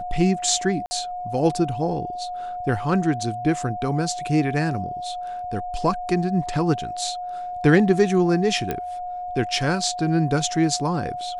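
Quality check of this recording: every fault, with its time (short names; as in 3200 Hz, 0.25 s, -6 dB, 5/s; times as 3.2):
tone 720 Hz -28 dBFS
0.86–0.91 gap 50 ms
8.71 pop -11 dBFS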